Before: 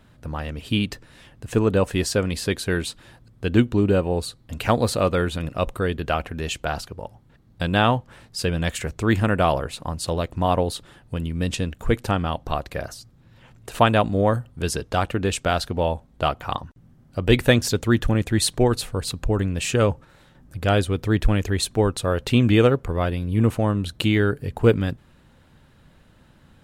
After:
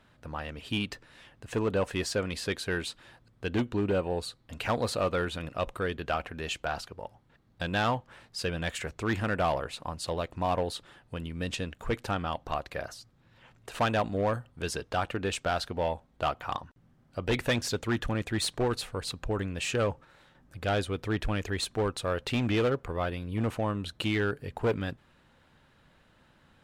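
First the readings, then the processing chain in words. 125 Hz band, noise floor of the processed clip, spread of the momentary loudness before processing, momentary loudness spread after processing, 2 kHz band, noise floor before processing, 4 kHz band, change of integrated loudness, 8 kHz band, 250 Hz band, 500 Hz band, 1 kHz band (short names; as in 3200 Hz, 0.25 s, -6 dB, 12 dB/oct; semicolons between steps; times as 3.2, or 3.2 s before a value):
-11.5 dB, -64 dBFS, 12 LU, 10 LU, -6.0 dB, -54 dBFS, -6.5 dB, -9.0 dB, -9.0 dB, -10.5 dB, -8.0 dB, -7.0 dB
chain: hard clip -13 dBFS, distortion -15 dB; overdrive pedal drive 7 dB, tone 4100 Hz, clips at -13 dBFS; gain -6 dB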